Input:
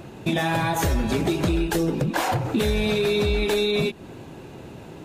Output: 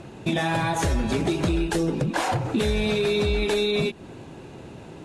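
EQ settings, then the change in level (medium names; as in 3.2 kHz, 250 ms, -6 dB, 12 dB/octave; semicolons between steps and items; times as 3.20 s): steep low-pass 11 kHz 36 dB/octave; -1.0 dB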